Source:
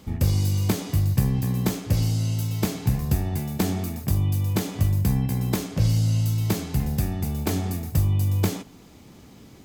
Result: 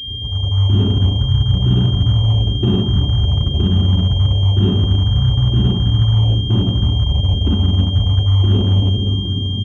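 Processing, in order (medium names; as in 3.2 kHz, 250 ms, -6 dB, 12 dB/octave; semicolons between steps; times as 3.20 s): resonances exaggerated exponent 3; formant shift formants -4 st; simulated room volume 1300 m³, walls mixed, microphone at 3.3 m; in parallel at -5.5 dB: wavefolder -28.5 dBFS; on the sum: comb of notches 160 Hz; echo from a far wall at 140 m, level -19 dB; reverse; compression, threshold -21 dBFS, peak gain reduction 12.5 dB; reverse; high-pass 67 Hz 12 dB/octave; level rider gain up to 9.5 dB; class-D stage that switches slowly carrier 3.2 kHz; trim +2 dB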